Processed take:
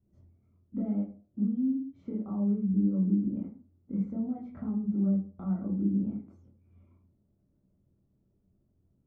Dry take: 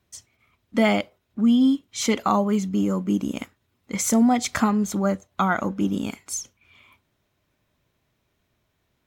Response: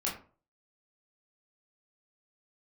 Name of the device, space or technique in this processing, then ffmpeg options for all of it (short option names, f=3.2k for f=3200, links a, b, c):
television next door: -filter_complex "[0:a]asettb=1/sr,asplit=3[a][b][c];[a]atrim=end=3.994[d];[b]atrim=start=3.99:end=4.7,asetpts=PTS-STARTPTS,afade=t=in:d=0.004:c=qsin,afade=t=out:st=0.706:d=0.004:c=qsin,equalizer=f=2k:w=0.36:g=4[e];[c]atrim=start=4.696[f];[d][e]acrossfade=d=0.004:c1=hsin:c2=qsin[g];[g][f]acrossfade=d=0.004:c1=qsin:c2=hsin,acompressor=threshold=-32dB:ratio=5,lowpass=280[h];[1:a]atrim=start_sample=2205[i];[h][i]afir=irnorm=-1:irlink=0"